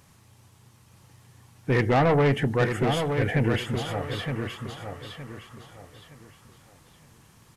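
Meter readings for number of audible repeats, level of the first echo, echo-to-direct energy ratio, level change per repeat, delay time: 3, -6.5 dB, -6.0 dB, -10.0 dB, 916 ms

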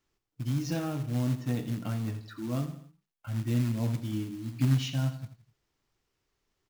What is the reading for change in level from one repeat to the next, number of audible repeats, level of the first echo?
-6.5 dB, 3, -12.5 dB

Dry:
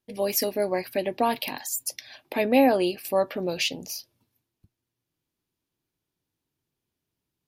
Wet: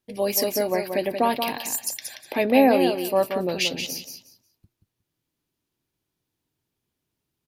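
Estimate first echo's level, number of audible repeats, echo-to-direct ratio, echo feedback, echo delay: -7.0 dB, 3, -7.0 dB, 20%, 180 ms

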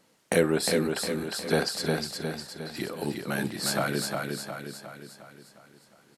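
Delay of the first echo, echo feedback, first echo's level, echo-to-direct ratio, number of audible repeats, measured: 358 ms, 51%, -4.0 dB, -2.5 dB, 6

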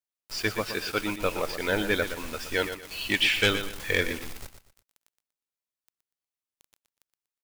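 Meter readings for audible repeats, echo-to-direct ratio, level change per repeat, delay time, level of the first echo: 3, -9.5 dB, -10.5 dB, 120 ms, -10.0 dB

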